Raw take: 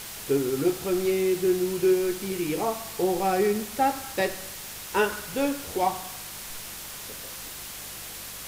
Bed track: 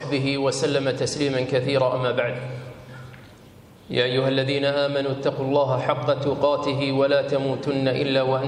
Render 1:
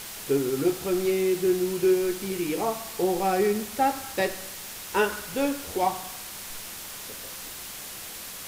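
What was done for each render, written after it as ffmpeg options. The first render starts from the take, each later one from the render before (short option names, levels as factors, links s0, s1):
-af "bandreject=f=50:t=h:w=4,bandreject=f=100:t=h:w=4,bandreject=f=150:t=h:w=4"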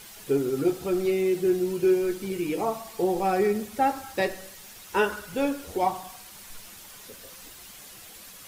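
-af "afftdn=nr=9:nf=-39"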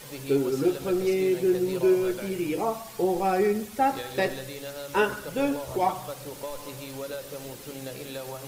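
-filter_complex "[1:a]volume=0.15[s0];[0:a][s0]amix=inputs=2:normalize=0"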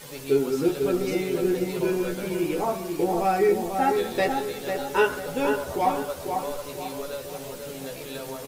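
-filter_complex "[0:a]asplit=2[s0][s1];[s1]adelay=12,volume=0.631[s2];[s0][s2]amix=inputs=2:normalize=0,asplit=2[s3][s4];[s4]adelay=493,lowpass=f=2000:p=1,volume=0.562,asplit=2[s5][s6];[s6]adelay=493,lowpass=f=2000:p=1,volume=0.41,asplit=2[s7][s8];[s8]adelay=493,lowpass=f=2000:p=1,volume=0.41,asplit=2[s9][s10];[s10]adelay=493,lowpass=f=2000:p=1,volume=0.41,asplit=2[s11][s12];[s12]adelay=493,lowpass=f=2000:p=1,volume=0.41[s13];[s3][s5][s7][s9][s11][s13]amix=inputs=6:normalize=0"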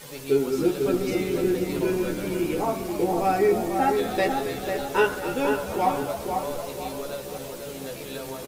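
-filter_complex "[0:a]asplit=7[s0][s1][s2][s3][s4][s5][s6];[s1]adelay=269,afreqshift=-71,volume=0.266[s7];[s2]adelay=538,afreqshift=-142,volume=0.143[s8];[s3]adelay=807,afreqshift=-213,volume=0.0776[s9];[s4]adelay=1076,afreqshift=-284,volume=0.0417[s10];[s5]adelay=1345,afreqshift=-355,volume=0.0226[s11];[s6]adelay=1614,afreqshift=-426,volume=0.0122[s12];[s0][s7][s8][s9][s10][s11][s12]amix=inputs=7:normalize=0"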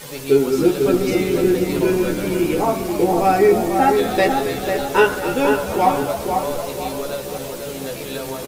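-af "volume=2.24,alimiter=limit=0.708:level=0:latency=1"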